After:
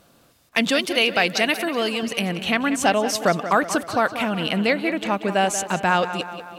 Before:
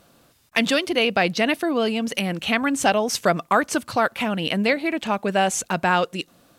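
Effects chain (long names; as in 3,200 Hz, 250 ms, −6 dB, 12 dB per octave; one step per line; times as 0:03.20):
0:00.79–0:02.03: spectral tilt +2 dB per octave
tape delay 184 ms, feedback 60%, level −10.5 dB, low-pass 4,600 Hz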